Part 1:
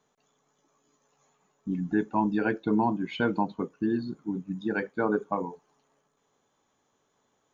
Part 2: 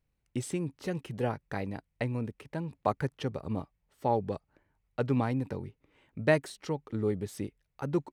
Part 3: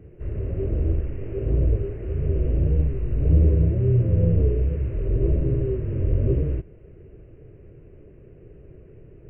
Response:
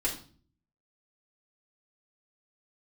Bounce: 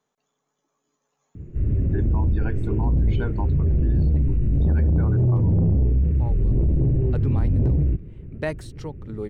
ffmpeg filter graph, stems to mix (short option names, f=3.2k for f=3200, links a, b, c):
-filter_complex "[0:a]volume=-5.5dB,asplit=2[a][b];[1:a]adelay=2150,volume=-2dB[c];[2:a]lowshelf=f=340:t=q:w=1.5:g=11,asoftclip=type=tanh:threshold=-8dB,adelay=1350,volume=-2.5dB[d];[b]apad=whole_len=453128[e];[c][e]sidechaincompress=threshold=-47dB:ratio=8:attack=9.3:release=1110[f];[a][f][d]amix=inputs=3:normalize=0,alimiter=limit=-15dB:level=0:latency=1:release=16"